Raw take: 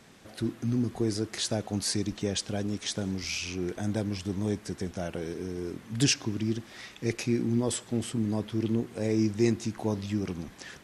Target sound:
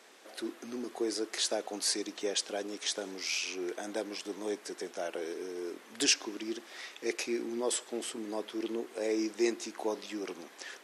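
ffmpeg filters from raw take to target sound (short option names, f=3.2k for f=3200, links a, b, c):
-af "highpass=f=350:w=0.5412,highpass=f=350:w=1.3066"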